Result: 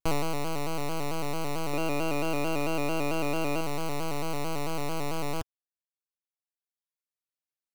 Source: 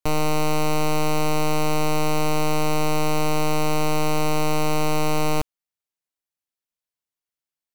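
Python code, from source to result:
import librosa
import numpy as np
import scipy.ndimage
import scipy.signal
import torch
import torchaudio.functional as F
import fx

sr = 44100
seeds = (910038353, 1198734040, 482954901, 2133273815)

y = fx.dereverb_blind(x, sr, rt60_s=1.3)
y = fx.small_body(y, sr, hz=(360.0, 540.0, 1300.0, 2600.0), ring_ms=45, db=12, at=(1.73, 3.61))
y = fx.vibrato_shape(y, sr, shape='square', rate_hz=4.5, depth_cents=100.0)
y = y * 10.0 ** (-4.5 / 20.0)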